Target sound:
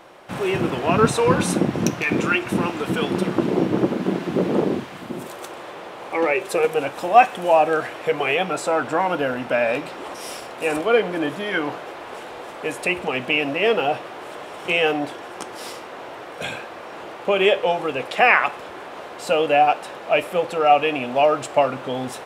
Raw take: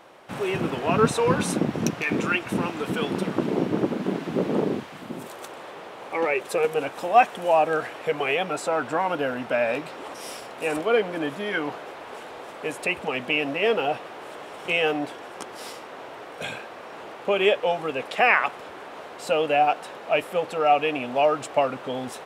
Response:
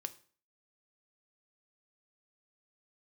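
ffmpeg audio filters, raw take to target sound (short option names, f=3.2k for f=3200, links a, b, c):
-filter_complex "[0:a]asplit=2[a][b];[1:a]atrim=start_sample=2205,lowshelf=f=60:g=8.5[c];[b][c]afir=irnorm=-1:irlink=0,volume=8dB[d];[a][d]amix=inputs=2:normalize=0,volume=-5.5dB"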